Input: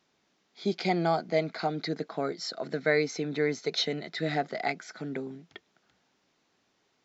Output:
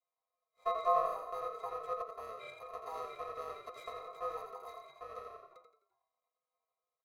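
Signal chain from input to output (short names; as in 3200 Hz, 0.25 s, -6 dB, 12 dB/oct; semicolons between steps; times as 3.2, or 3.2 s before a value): FFT order left unsorted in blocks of 64 samples; spectral noise reduction 12 dB; in parallel at +1.5 dB: limiter -21.5 dBFS, peak gain reduction 11 dB; on the sum: octave resonator F#, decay 0.23 s; on a send: frequency-shifting echo 85 ms, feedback 38%, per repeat +34 Hz, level -6.5 dB; on the sum: ring modulator 880 Hz; gain +5.5 dB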